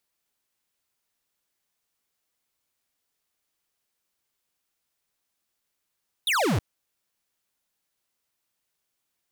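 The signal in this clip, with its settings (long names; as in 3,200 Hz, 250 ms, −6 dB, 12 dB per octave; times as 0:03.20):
single falling chirp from 3,900 Hz, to 81 Hz, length 0.32 s square, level −23 dB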